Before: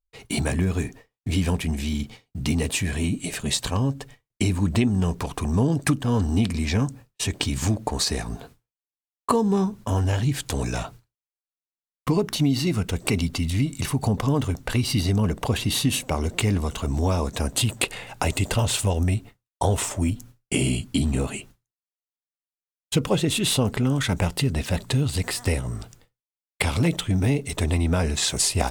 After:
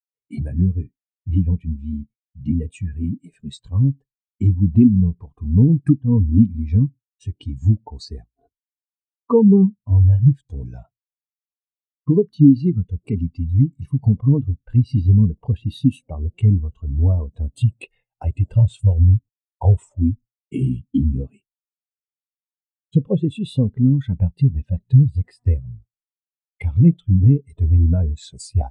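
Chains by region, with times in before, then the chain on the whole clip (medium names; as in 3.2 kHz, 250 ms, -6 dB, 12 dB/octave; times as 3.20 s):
8.24–9.30 s: comb 2.8 ms, depth 56% + compressor with a negative ratio -42 dBFS
whole clip: gate -36 dBFS, range -7 dB; spectral contrast expander 2.5:1; trim +2.5 dB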